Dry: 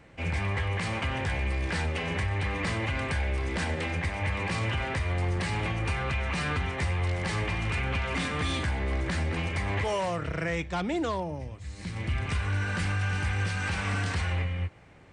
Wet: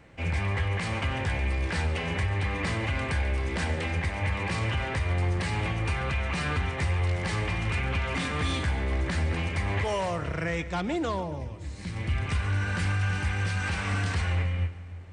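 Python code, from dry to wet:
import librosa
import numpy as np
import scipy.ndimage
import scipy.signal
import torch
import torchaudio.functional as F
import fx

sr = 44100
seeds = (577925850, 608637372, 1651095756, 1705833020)

y = fx.peak_eq(x, sr, hz=81.0, db=2.5, octaves=0.77)
y = fx.echo_split(y, sr, split_hz=330.0, low_ms=321, high_ms=140, feedback_pct=52, wet_db=-15.5)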